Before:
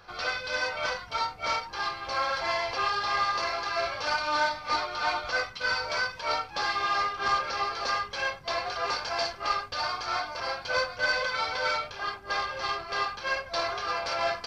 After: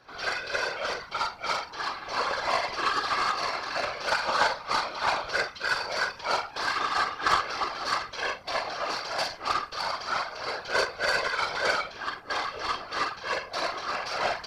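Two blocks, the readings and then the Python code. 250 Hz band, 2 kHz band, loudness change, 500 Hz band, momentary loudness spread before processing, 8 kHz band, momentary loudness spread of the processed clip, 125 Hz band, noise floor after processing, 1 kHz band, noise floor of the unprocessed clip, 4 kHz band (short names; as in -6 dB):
+2.5 dB, +0.5 dB, +0.5 dB, +0.5 dB, 5 LU, +2.5 dB, 6 LU, -0.5 dB, -45 dBFS, +0.5 dB, -45 dBFS, +0.5 dB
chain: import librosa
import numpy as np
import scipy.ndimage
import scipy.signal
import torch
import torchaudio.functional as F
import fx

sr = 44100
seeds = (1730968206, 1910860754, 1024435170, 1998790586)

y = fx.doubler(x, sr, ms=45.0, db=-4)
y = fx.cheby_harmonics(y, sr, harmonics=(3,), levels_db=(-14,), full_scale_db=-14.0)
y = fx.whisperise(y, sr, seeds[0])
y = y * librosa.db_to_amplitude(4.5)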